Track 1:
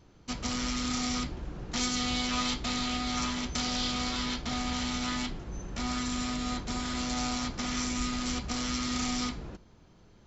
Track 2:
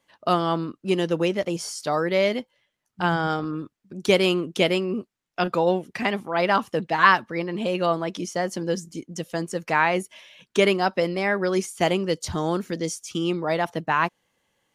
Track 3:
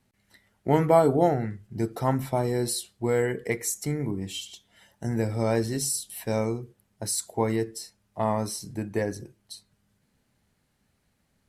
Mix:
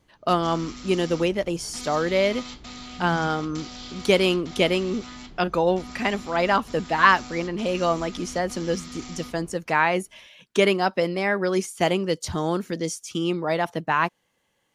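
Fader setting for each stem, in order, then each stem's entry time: -8.0 dB, 0.0 dB, off; 0.00 s, 0.00 s, off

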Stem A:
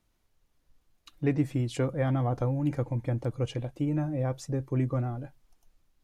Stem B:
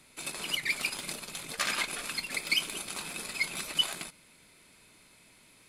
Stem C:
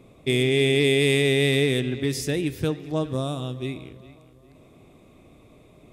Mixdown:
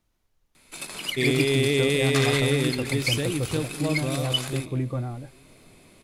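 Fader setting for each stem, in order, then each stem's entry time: 0.0, +1.5, -3.0 dB; 0.00, 0.55, 0.90 s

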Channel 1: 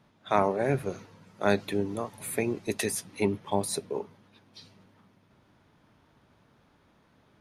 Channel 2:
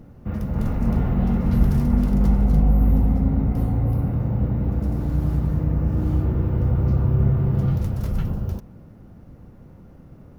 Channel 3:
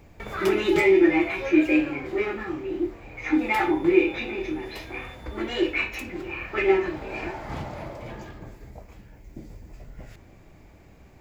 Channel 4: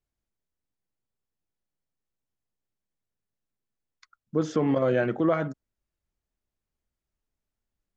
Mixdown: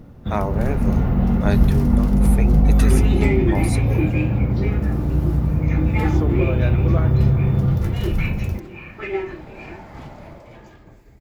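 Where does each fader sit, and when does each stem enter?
-0.5, +2.5, -5.0, -3.5 dB; 0.00, 0.00, 2.45, 1.65 s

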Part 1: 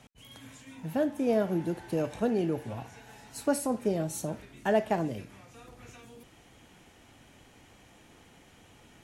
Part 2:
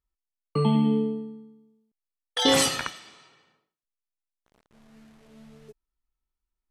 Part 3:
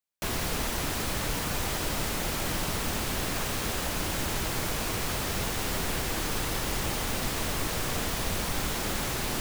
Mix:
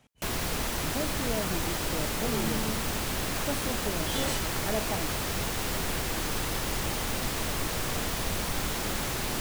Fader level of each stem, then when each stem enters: -7.0, -13.0, -0.5 dB; 0.00, 1.70, 0.00 s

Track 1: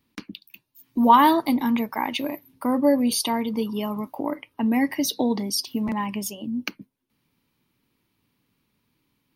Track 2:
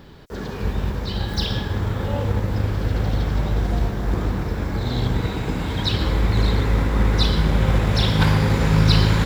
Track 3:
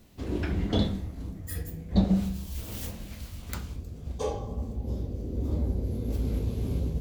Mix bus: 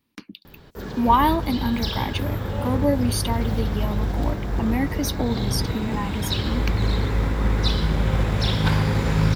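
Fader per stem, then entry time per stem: -2.5, -3.0, -13.5 dB; 0.00, 0.45, 0.70 s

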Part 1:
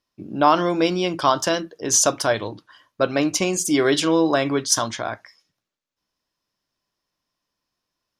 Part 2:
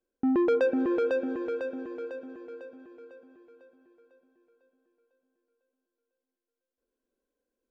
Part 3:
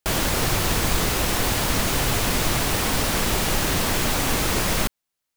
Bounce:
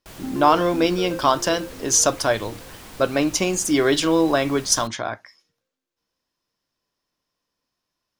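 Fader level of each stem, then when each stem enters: 0.0, -5.5, -19.0 dB; 0.00, 0.00, 0.00 s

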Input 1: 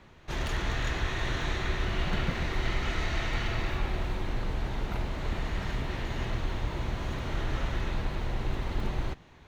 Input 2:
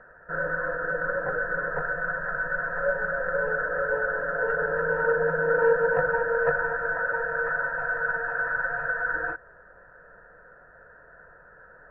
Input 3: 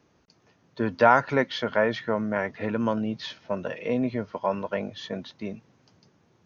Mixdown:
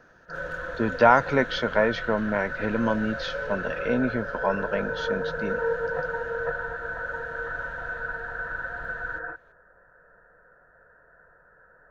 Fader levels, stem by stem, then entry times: -15.0, -5.5, +1.0 dB; 0.05, 0.00, 0.00 s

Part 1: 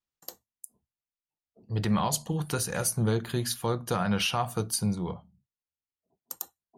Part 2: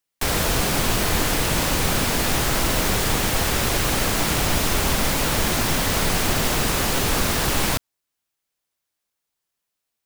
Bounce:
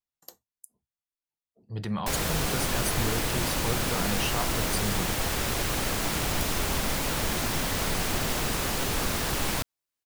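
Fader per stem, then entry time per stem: -5.0, -7.0 dB; 0.00, 1.85 s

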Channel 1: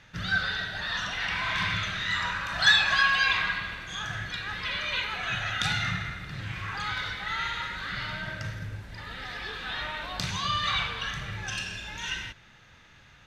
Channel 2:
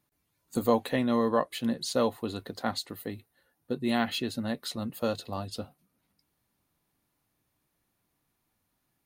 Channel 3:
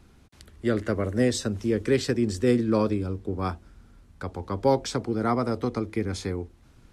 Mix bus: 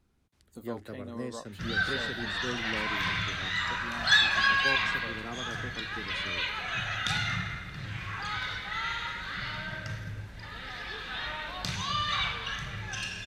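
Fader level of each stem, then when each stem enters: -2.0, -16.5, -16.0 dB; 1.45, 0.00, 0.00 s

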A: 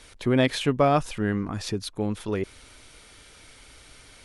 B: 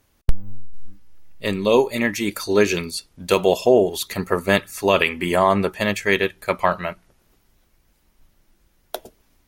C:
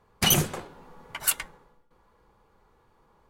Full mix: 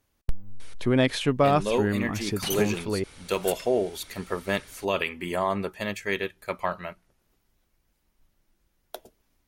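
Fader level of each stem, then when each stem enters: -0.5, -9.5, -10.5 dB; 0.60, 0.00, 2.20 s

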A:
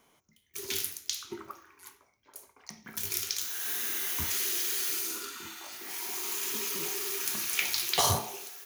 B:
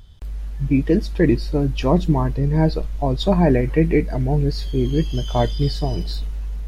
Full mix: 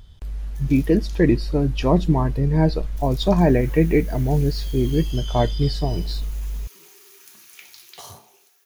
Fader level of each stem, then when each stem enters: -15.0, -0.5 dB; 0.00, 0.00 s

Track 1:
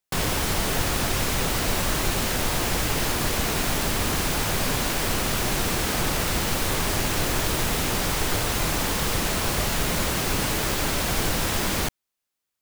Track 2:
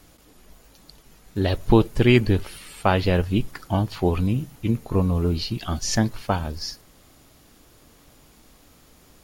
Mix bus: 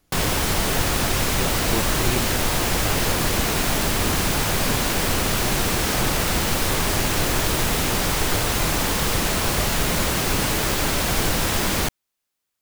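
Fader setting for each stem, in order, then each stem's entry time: +3.0, -12.5 dB; 0.00, 0.00 s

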